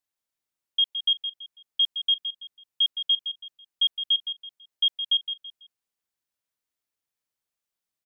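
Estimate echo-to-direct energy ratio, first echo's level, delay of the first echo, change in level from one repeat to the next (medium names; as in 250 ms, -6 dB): -9.0 dB, -9.5 dB, 165 ms, -10.0 dB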